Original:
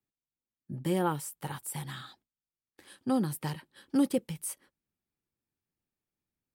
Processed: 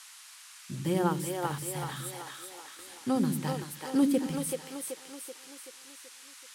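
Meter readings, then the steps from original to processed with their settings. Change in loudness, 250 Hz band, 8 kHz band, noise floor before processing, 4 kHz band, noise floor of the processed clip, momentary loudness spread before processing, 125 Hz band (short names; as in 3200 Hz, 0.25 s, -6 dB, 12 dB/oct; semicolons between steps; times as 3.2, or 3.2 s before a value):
+1.0 dB, +2.5 dB, +3.5 dB, under -85 dBFS, +4.5 dB, -51 dBFS, 15 LU, +2.0 dB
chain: split-band echo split 350 Hz, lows 82 ms, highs 0.381 s, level -3 dB; band noise 1000–11000 Hz -51 dBFS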